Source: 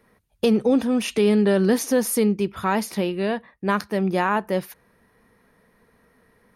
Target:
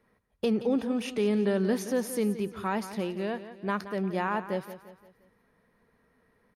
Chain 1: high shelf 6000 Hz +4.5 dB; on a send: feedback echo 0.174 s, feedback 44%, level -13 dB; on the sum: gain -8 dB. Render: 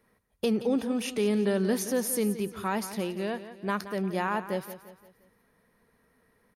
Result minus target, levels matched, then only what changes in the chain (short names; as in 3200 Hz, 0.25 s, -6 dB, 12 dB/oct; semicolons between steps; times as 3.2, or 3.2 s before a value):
8000 Hz band +7.0 dB
change: high shelf 6000 Hz -6.5 dB